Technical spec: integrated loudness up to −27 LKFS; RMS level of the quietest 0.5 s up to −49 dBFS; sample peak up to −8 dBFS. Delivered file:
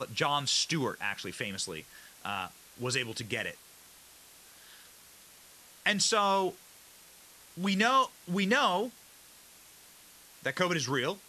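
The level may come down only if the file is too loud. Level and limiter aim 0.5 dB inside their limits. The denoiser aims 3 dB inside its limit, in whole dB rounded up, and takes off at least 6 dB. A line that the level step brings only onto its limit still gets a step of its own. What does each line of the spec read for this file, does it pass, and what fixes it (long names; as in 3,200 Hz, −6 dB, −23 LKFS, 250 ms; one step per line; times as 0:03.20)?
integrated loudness −30.0 LKFS: in spec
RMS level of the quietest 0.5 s −56 dBFS: in spec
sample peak −12.0 dBFS: in spec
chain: no processing needed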